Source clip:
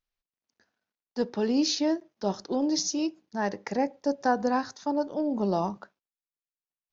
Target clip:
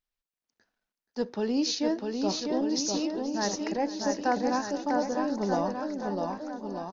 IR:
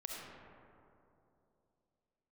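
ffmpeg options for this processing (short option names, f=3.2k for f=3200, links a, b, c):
-filter_complex "[0:a]asplit=2[a][b];[b]aecho=0:1:650|1235|1762|2235|2662:0.631|0.398|0.251|0.158|0.1[c];[a][c]amix=inputs=2:normalize=0,asubboost=boost=3:cutoff=56,asplit=2[d][e];[e]aecho=0:1:478:0.133[f];[d][f]amix=inputs=2:normalize=0,volume=-2dB"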